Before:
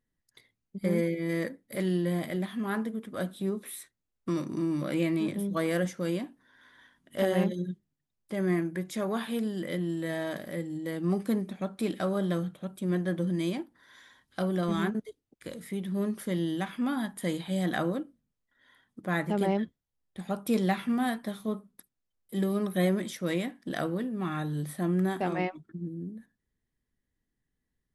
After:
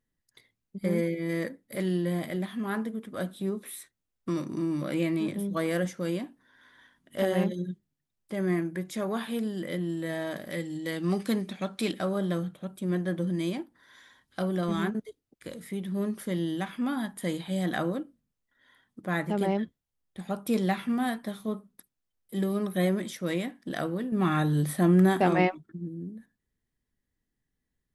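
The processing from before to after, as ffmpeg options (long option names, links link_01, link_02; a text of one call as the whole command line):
ffmpeg -i in.wav -filter_complex "[0:a]asettb=1/sr,asplit=3[link_01][link_02][link_03];[link_01]atrim=end=10.504[link_04];[link_02]atrim=start=10.5:end=11.92,asetpts=PTS-STARTPTS,afade=type=in:duration=0.004:curve=qsin,afade=type=out:start_time=1.416:duration=0.004:curve=qsin,equalizer=frequency=4000:width=0.44:gain=9.5[link_05];[link_03]atrim=start=11.916[link_06];[link_04][link_05]acrossfade=duration=0.004:curve1=hsin:curve2=qsin[link_07];[link_07][link_06]acrossfade=duration=0.004:curve1=qsin:curve2=hsin,asettb=1/sr,asplit=3[link_08][link_09][link_10];[link_08]atrim=end=24.124[link_11];[link_09]atrim=start=24.12:end=25.55,asetpts=PTS-STARTPTS,afade=type=in:duration=0.004:curve=qsin,afade=type=out:start_time=1.426:duration=0.004:curve=qsin,acontrast=81[link_12];[link_10]atrim=start=25.546[link_13];[link_11][link_12]acrossfade=duration=0.004:curve1=hsin:curve2=qsin[link_14];[link_14][link_13]acrossfade=duration=0.004:curve1=qsin:curve2=hsin" out.wav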